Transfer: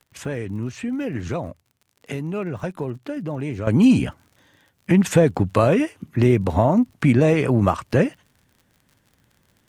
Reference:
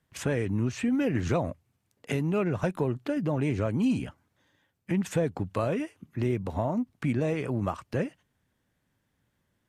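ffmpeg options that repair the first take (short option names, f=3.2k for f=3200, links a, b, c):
-af "adeclick=t=4,asetnsamples=n=441:p=0,asendcmd='3.67 volume volume -11.5dB',volume=0dB"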